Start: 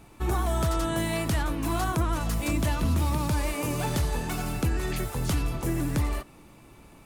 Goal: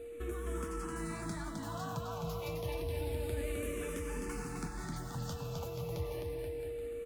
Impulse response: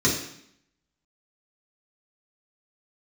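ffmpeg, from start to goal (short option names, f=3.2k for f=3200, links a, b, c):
-filter_complex "[0:a]flanger=delay=2.8:depth=9.1:regen=39:speed=1.4:shape=sinusoidal,acompressor=threshold=-40dB:ratio=3,aeval=exprs='val(0)+0.00631*sin(2*PI*470*n/s)':c=same,aecho=1:1:260|481|668.8|828.5|964.2:0.631|0.398|0.251|0.158|0.1,asplit=2[a][b];[b]afreqshift=-0.29[c];[a][c]amix=inputs=2:normalize=1,volume=1dB"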